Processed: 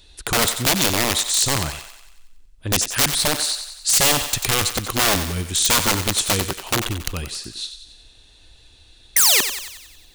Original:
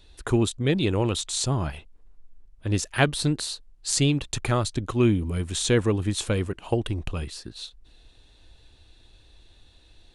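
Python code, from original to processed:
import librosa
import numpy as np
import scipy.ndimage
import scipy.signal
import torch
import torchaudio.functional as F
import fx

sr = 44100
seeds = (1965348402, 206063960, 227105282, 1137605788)

y = fx.spec_paint(x, sr, seeds[0], shape='fall', start_s=9.16, length_s=0.25, low_hz=320.0, high_hz=2100.0, level_db=-15.0)
y = (np.mod(10.0 ** (17.5 / 20.0) * y + 1.0, 2.0) - 1.0) / 10.0 ** (17.5 / 20.0)
y = fx.high_shelf(y, sr, hz=2400.0, db=9.0)
y = fx.echo_thinned(y, sr, ms=92, feedback_pct=56, hz=520.0, wet_db=-9)
y = y * 10.0 ** (1.5 / 20.0)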